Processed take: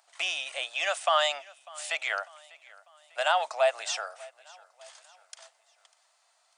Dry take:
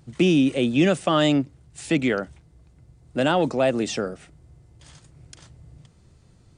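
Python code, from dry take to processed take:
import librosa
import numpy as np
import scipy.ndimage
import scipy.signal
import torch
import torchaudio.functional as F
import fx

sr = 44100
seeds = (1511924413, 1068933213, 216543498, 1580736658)

p1 = scipy.signal.sosfilt(scipy.signal.cheby1(5, 1.0, 650.0, 'highpass', fs=sr, output='sos'), x)
y = p1 + fx.echo_feedback(p1, sr, ms=597, feedback_pct=48, wet_db=-22.5, dry=0)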